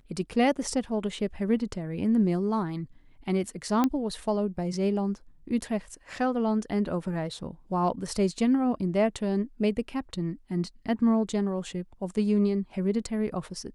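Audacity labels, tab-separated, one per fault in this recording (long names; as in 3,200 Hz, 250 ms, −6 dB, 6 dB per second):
3.840000	3.840000	click −12 dBFS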